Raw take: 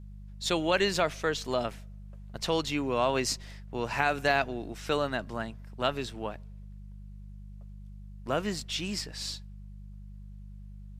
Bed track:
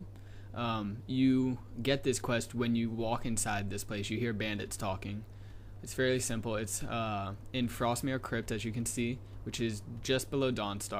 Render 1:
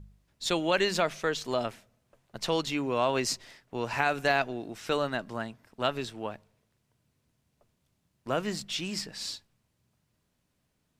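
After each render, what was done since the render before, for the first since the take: de-hum 50 Hz, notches 4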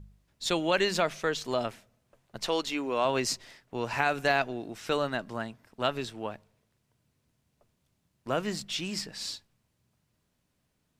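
2.46–3.05 bell 140 Hz -14 dB 0.78 oct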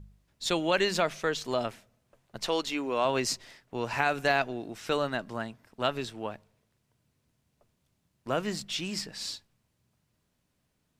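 nothing audible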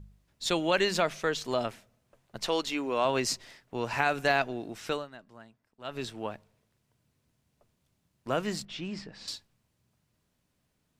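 4.86–6.04 dip -16 dB, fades 0.20 s; 8.65–9.28 tape spacing loss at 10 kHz 23 dB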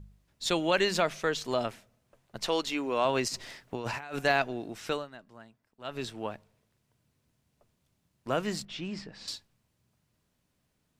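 3.28–4.19 negative-ratio compressor -37 dBFS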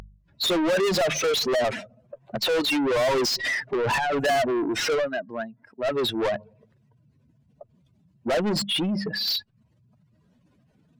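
spectral contrast raised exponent 2.4; overdrive pedal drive 33 dB, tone 6000 Hz, clips at -16.5 dBFS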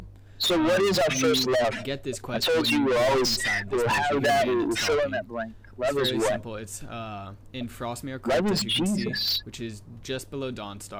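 add bed track -1 dB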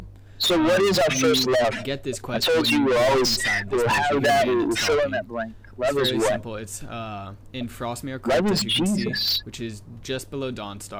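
gain +3 dB

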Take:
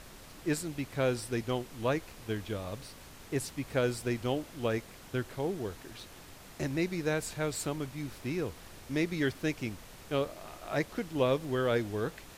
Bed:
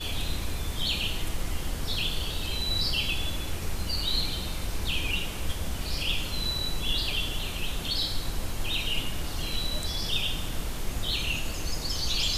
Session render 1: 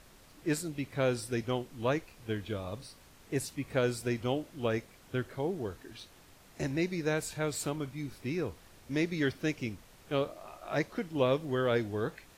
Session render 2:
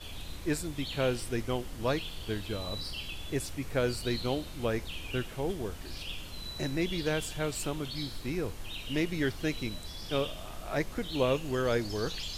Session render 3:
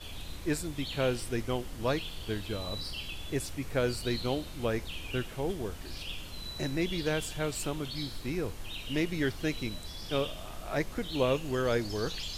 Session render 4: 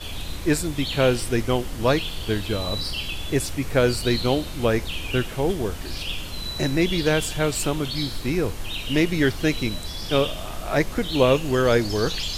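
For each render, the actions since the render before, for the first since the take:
noise print and reduce 7 dB
add bed -11.5 dB
nothing audible
gain +10 dB

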